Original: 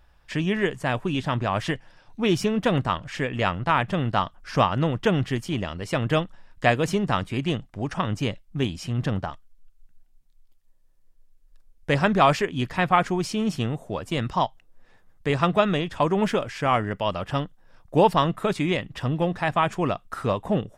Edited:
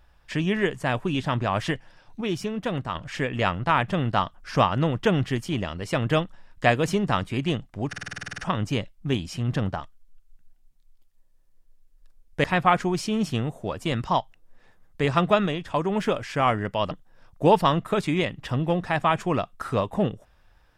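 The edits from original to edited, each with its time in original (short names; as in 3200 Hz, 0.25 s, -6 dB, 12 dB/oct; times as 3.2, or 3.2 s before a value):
2.21–2.95 gain -6 dB
7.88 stutter 0.05 s, 11 plays
11.94–12.7 cut
15.72–16.32 gain -3 dB
17.17–17.43 cut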